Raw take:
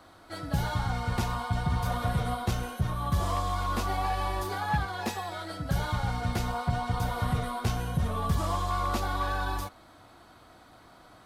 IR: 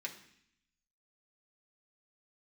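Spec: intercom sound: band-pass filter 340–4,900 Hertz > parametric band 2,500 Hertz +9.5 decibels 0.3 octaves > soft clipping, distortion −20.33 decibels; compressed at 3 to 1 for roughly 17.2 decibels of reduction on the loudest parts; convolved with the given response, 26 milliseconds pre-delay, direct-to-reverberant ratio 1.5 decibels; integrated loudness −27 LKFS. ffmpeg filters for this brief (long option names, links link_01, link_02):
-filter_complex "[0:a]acompressor=threshold=-47dB:ratio=3,asplit=2[link_01][link_02];[1:a]atrim=start_sample=2205,adelay=26[link_03];[link_02][link_03]afir=irnorm=-1:irlink=0,volume=-1dB[link_04];[link_01][link_04]amix=inputs=2:normalize=0,highpass=340,lowpass=4900,equalizer=frequency=2500:width_type=o:width=0.3:gain=9.5,asoftclip=threshold=-37.5dB,volume=20.5dB"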